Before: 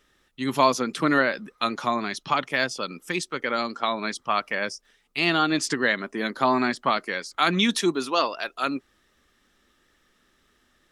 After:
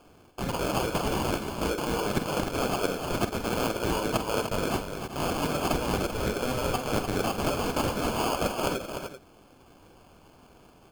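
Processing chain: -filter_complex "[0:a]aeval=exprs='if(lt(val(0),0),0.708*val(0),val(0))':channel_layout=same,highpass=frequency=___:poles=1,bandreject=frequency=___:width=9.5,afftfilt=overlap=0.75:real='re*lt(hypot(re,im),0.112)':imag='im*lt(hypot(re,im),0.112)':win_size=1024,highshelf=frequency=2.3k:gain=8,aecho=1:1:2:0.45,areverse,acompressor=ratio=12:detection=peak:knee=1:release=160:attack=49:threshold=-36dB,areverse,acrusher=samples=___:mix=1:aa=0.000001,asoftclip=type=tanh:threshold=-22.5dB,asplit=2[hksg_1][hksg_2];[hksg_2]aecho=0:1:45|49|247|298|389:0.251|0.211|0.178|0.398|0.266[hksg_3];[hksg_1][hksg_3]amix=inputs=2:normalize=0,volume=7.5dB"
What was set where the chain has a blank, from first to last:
290, 1.1k, 23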